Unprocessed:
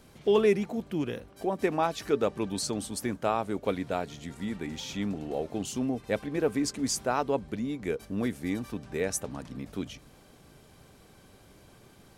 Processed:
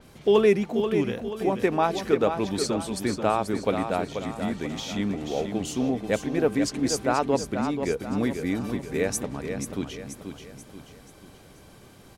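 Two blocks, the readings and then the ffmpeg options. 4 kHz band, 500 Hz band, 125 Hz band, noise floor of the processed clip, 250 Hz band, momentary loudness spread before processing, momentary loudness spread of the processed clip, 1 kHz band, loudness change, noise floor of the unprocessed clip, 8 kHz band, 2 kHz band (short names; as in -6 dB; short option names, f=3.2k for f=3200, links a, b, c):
+4.0 dB, +5.0 dB, +5.0 dB, -51 dBFS, +5.0 dB, 9 LU, 9 LU, +5.0 dB, +4.5 dB, -56 dBFS, +2.0 dB, +5.0 dB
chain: -af "aecho=1:1:484|968|1452|1936|2420:0.422|0.181|0.078|0.0335|0.0144,adynamicequalizer=threshold=0.00316:dfrequency=5600:dqfactor=0.7:tfrequency=5600:tqfactor=0.7:attack=5:release=100:ratio=0.375:range=3:mode=cutabove:tftype=highshelf,volume=4dB"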